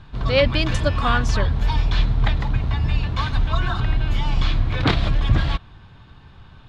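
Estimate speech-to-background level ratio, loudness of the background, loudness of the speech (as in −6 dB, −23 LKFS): −0.5 dB, −22.5 LKFS, −23.0 LKFS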